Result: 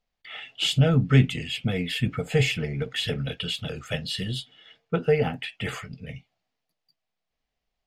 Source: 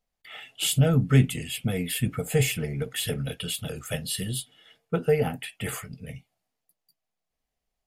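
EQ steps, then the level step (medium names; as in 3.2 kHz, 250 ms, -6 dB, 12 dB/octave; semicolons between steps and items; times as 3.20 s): distance through air 200 m; treble shelf 2.6 kHz +11.5 dB; +1.0 dB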